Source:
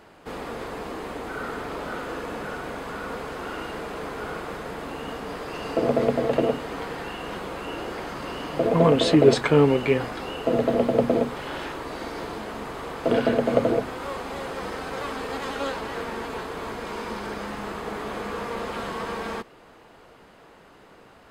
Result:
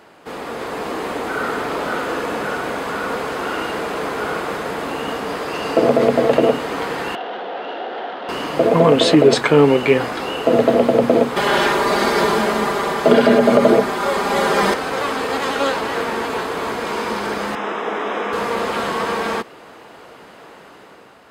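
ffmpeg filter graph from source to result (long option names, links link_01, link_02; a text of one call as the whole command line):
ffmpeg -i in.wav -filter_complex "[0:a]asettb=1/sr,asplit=3[link_01][link_02][link_03];[link_01]atrim=end=7.154[link_04];[link_02]atrim=start=7.15:end=8.29,asetpts=PTS-STARTPTS,afade=type=in:duration=0.004:curve=qsin,afade=type=out:start_time=1.136:duration=0.004:curve=qsin,adynamicsmooth=sensitivity=5.5:basefreq=2200,asoftclip=type=hard:threshold=-35dB,highpass=frequency=250:width=0.5412,highpass=frequency=250:width=1.3066,equalizer=frequency=310:width_type=q:width=4:gain=-7,equalizer=frequency=730:width_type=q:width=4:gain=8,equalizer=frequency=1100:width_type=q:width=4:gain=-7,equalizer=frequency=2300:width_type=q:width=4:gain=-8,equalizer=frequency=3300:width_type=q:width=4:gain=4,lowpass=frequency=3700:width=0.5412,lowpass=frequency=3700:width=1.3066[link_05];[link_03]atrim=start=8.286[link_06];[link_04][link_05]acrossfade=duration=0.004:curve1=hsin:curve2=qsin[link_07];[link_07][link_06]acrossfade=duration=0.004:curve1=qsin:curve2=hsin,asettb=1/sr,asplit=3[link_08][link_09][link_10];[link_08]atrim=end=11.364[link_11];[link_09]atrim=start=11.36:end=14.74,asetpts=PTS-STARTPTS,afade=type=in:duration=0.004:curve=qsin,afade=type=out:start_time=3.376:duration=0.004:curve=qsin,equalizer=frequency=2700:width_type=o:width=0.25:gain=-4,acontrast=32,aecho=1:1:5:0.98,atrim=end_sample=149058[link_12];[link_10]atrim=start=14.736[link_13];[link_11][link_12]acrossfade=duration=0.004:curve1=hsin:curve2=qsin[link_14];[link_14][link_13]acrossfade=duration=0.004:curve1=qsin:curve2=hsin,asettb=1/sr,asplit=3[link_15][link_16][link_17];[link_15]atrim=end=17.554[link_18];[link_16]atrim=start=17.55:end=18.33,asetpts=PTS-STARTPTS,afade=type=in:duration=0.004:curve=qsin,afade=type=out:start_time=0.776:duration=0.004:curve=qsin,asuperstop=centerf=4400:order=4:qfactor=3.7,acrossover=split=200 5500:gain=0.0631 1 0.126[link_19][link_20][link_21];[link_19][link_20][link_21]amix=inputs=3:normalize=0[link_22];[link_17]atrim=start=18.326[link_23];[link_18][link_22]acrossfade=duration=0.004:curve1=hsin:curve2=qsin[link_24];[link_24][link_23]acrossfade=duration=0.004:curve1=qsin:curve2=hsin,highpass=frequency=210:poles=1,dynaudnorm=framelen=150:gausssize=9:maxgain=5.5dB,alimiter=level_in=6dB:limit=-1dB:release=50:level=0:latency=1,volume=-1dB" out.wav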